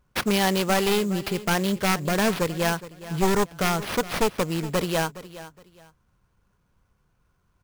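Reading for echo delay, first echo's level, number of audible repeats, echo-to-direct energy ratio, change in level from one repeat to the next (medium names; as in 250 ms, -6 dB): 416 ms, -16.0 dB, 2, -16.0 dB, -12.0 dB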